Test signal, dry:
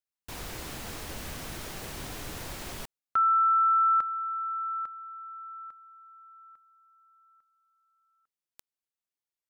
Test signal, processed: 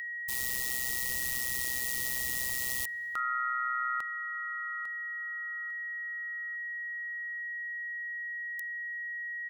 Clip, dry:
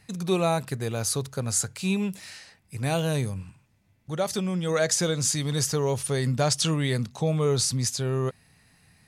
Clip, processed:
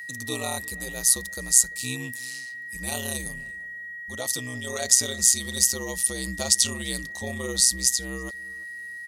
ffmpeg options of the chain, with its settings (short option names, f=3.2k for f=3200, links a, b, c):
-filter_complex "[0:a]equalizer=f=1.7k:t=o:w=0.75:g=-10.5,aeval=exprs='val(0)*sin(2*PI*63*n/s)':c=same,aeval=exprs='val(0)+0.0158*sin(2*PI*1900*n/s)':c=same,crystalizer=i=7:c=0,asplit=2[a][b];[b]adelay=342,lowpass=f=1.9k:p=1,volume=-21.5dB,asplit=2[c][d];[d]adelay=342,lowpass=f=1.9k:p=1,volume=0.32[e];[c][e]amix=inputs=2:normalize=0[f];[a][f]amix=inputs=2:normalize=0,volume=-6.5dB"